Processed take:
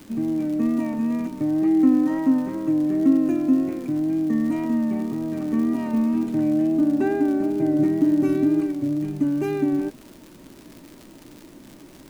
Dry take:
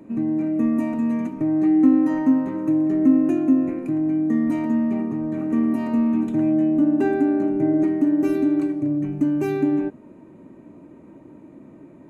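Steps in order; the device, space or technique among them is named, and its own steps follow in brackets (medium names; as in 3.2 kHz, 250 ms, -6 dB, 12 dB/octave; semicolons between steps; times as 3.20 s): 7.78–8.61 s: peaking EQ 130 Hz +10 dB 1.1 oct; vinyl LP (wow and flutter; crackle 130 per s -32 dBFS; pink noise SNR 32 dB); trim -1.5 dB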